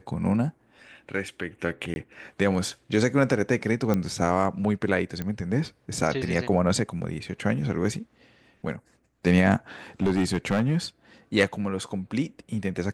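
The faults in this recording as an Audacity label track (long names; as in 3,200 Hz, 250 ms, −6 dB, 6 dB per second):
1.940000	1.960000	drop-out 21 ms
3.940000	3.940000	click −13 dBFS
5.220000	5.220000	click −17 dBFS
10.020000	10.770000	clipping −18 dBFS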